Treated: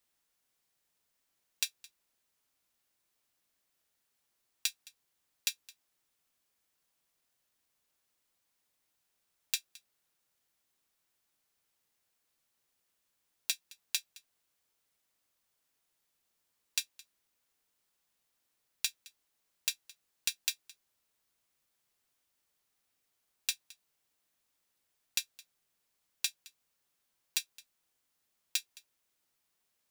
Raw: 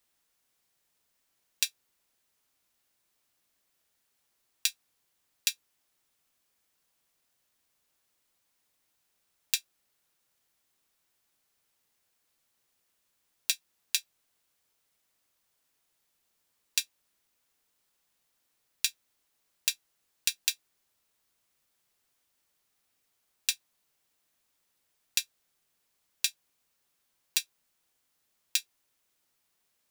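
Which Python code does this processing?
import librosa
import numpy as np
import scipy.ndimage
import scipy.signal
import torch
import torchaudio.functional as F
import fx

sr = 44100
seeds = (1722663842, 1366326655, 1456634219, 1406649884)

p1 = (np.mod(10.0 ** (13.0 / 20.0) * x + 1.0, 2.0) - 1.0) / 10.0 ** (13.0 / 20.0)
p2 = x + (p1 * 10.0 ** (-11.0 / 20.0))
p3 = p2 + 10.0 ** (-22.0 / 20.0) * np.pad(p2, (int(216 * sr / 1000.0), 0))[:len(p2)]
y = p3 * 10.0 ** (-6.0 / 20.0)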